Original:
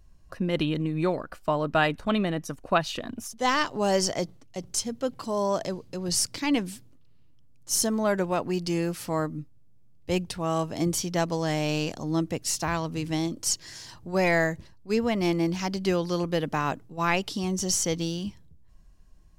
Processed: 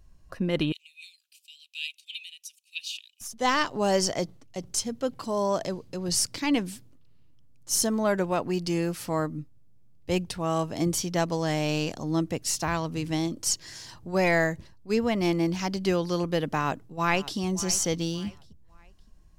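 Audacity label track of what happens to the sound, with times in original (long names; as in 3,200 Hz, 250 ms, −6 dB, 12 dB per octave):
0.720000	3.210000	Chebyshev high-pass filter 2,500 Hz, order 6
16.550000	17.380000	delay throw 570 ms, feedback 35%, level −17 dB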